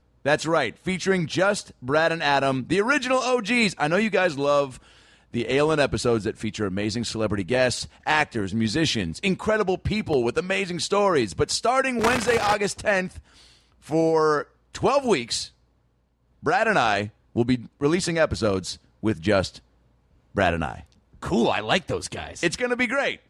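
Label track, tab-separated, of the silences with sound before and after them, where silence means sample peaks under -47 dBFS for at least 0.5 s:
15.510000	16.430000	silence
19.600000	20.350000	silence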